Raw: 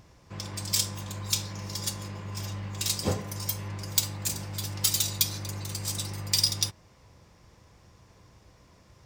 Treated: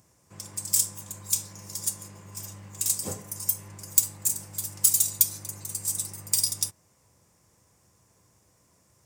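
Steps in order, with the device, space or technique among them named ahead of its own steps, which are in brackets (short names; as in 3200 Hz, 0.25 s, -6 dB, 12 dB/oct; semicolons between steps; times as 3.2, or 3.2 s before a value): budget condenser microphone (HPF 89 Hz; resonant high shelf 5900 Hz +13 dB, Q 1.5); gain -7.5 dB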